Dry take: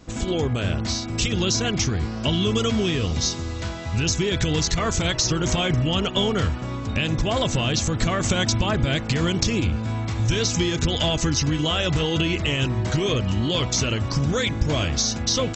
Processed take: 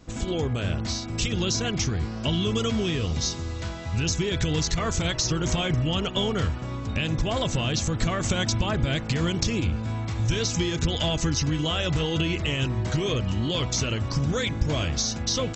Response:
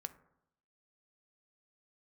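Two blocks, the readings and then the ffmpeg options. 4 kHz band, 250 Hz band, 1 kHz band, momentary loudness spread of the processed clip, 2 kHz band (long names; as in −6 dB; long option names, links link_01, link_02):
−4.0 dB, −3.5 dB, −4.0 dB, 3 LU, −4.0 dB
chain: -filter_complex "[0:a]asplit=2[link_01][link_02];[1:a]atrim=start_sample=2205,lowshelf=frequency=150:gain=10[link_03];[link_02][link_03]afir=irnorm=-1:irlink=0,volume=-10dB[link_04];[link_01][link_04]amix=inputs=2:normalize=0,volume=-5.5dB"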